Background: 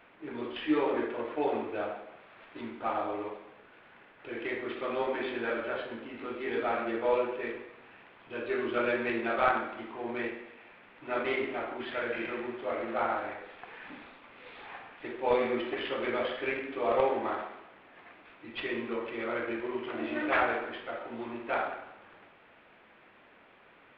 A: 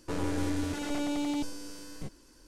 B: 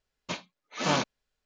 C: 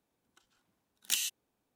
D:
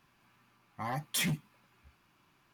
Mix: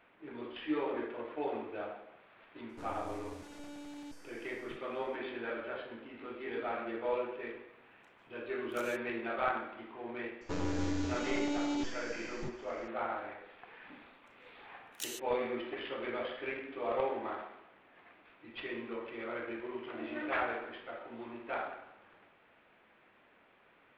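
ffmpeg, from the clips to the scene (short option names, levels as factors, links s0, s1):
-filter_complex "[1:a]asplit=2[s0][s1];[3:a]asplit=2[s2][s3];[0:a]volume=0.473[s4];[s2]acompressor=threshold=0.00891:ratio=6:attack=3.2:release=140:knee=1:detection=peak[s5];[s1]aresample=16000,aresample=44100[s6];[s0]atrim=end=2.47,asetpts=PTS-STARTPTS,volume=0.158,afade=t=in:d=0.004:c=hsin,afade=t=out:st=2.466:d=0.004:c=hsin,adelay=2690[s7];[s5]atrim=end=1.75,asetpts=PTS-STARTPTS,volume=0.335,afade=t=in:d=0.004:c=hsin,afade=t=out:st=1.746:d=0.004:c=hsin,adelay=7670[s8];[s6]atrim=end=2.47,asetpts=PTS-STARTPTS,volume=0.708,afade=t=in:d=0.004:c=hsin,afade=t=out:st=2.466:d=0.004:c=hsin,adelay=10410[s9];[s3]atrim=end=1.75,asetpts=PTS-STARTPTS,volume=0.316,afade=t=in:d=0.004:c=hsin,afade=t=out:st=1.746:d=0.004:c=hsin,adelay=13900[s10];[s4][s7][s8][s9][s10]amix=inputs=5:normalize=0"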